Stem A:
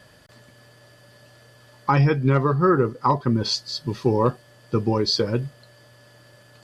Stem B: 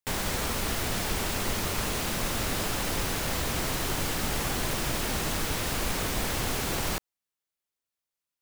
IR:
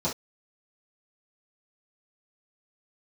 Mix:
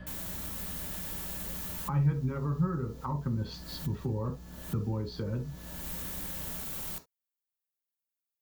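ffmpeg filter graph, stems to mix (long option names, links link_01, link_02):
-filter_complex "[0:a]lowpass=2000,acompressor=threshold=-31dB:ratio=1.5,aeval=exprs='val(0)+0.00447*(sin(2*PI*60*n/s)+sin(2*PI*2*60*n/s)/2+sin(2*PI*3*60*n/s)/3+sin(2*PI*4*60*n/s)/4+sin(2*PI*5*60*n/s)/5)':channel_layout=same,volume=0dB,asplit=3[link_01][link_02][link_03];[link_02]volume=-14dB[link_04];[1:a]volume=-16.5dB,asplit=2[link_05][link_06];[link_06]volume=-15dB[link_07];[link_03]apad=whole_len=370989[link_08];[link_05][link_08]sidechaincompress=threshold=-41dB:ratio=8:attack=5.5:release=367[link_09];[2:a]atrim=start_sample=2205[link_10];[link_04][link_07]amix=inputs=2:normalize=0[link_11];[link_11][link_10]afir=irnorm=-1:irlink=0[link_12];[link_01][link_09][link_12]amix=inputs=3:normalize=0,acrossover=split=140[link_13][link_14];[link_14]acompressor=threshold=-42dB:ratio=2.5[link_15];[link_13][link_15]amix=inputs=2:normalize=0,aemphasis=mode=production:type=50fm"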